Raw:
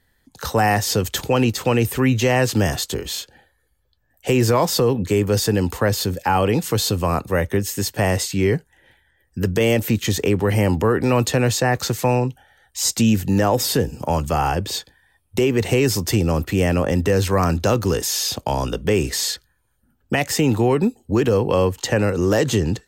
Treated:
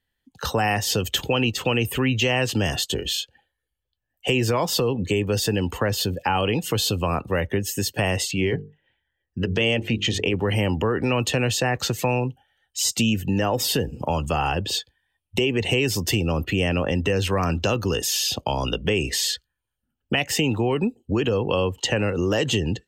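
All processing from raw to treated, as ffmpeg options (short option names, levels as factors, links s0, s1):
-filter_complex "[0:a]asettb=1/sr,asplit=3[s0][s1][s2];[s0]atrim=end=8.314[s3];[s1]atrim=start=8.31:end=10.34,asetpts=PTS-STARTPTS,afade=t=in:d=0.004:c=qsin,afade=t=out:st=2.026:d=0.004:c=qsin,bandreject=f=50:t=h:w=6,bandreject=f=100:t=h:w=6,bandreject=f=150:t=h:w=6,bandreject=f=200:t=h:w=6,bandreject=f=250:t=h:w=6,bandreject=f=300:t=h:w=6,bandreject=f=350:t=h:w=6,bandreject=f=400:t=h:w=6,bandreject=f=450:t=h:w=6,adynamicsmooth=sensitivity=6.5:basefreq=3700[s4];[s2]atrim=start=10.336[s5];[s3][s4]acrossfade=d=0.004:c1=hsin:c2=qsin[s6];[s6][s5]acrossfade=d=0.004:c1=qsin:c2=hsin,afftdn=nr=16:nf=-38,equalizer=f=2900:t=o:w=0.48:g=12,acompressor=threshold=0.0794:ratio=2"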